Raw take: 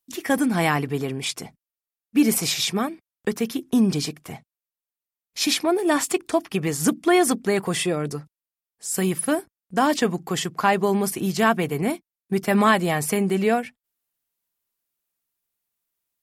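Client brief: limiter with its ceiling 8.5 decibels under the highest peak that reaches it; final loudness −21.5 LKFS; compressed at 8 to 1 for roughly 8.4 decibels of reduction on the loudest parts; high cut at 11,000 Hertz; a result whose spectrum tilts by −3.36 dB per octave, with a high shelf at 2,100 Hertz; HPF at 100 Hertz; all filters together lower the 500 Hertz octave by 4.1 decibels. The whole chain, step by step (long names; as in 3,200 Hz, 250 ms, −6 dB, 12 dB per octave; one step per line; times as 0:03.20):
high-pass filter 100 Hz
low-pass filter 11,000 Hz
parametric band 500 Hz −6.5 dB
high-shelf EQ 2,100 Hz +7 dB
downward compressor 8 to 1, threshold −22 dBFS
level +7.5 dB
brickwall limiter −10.5 dBFS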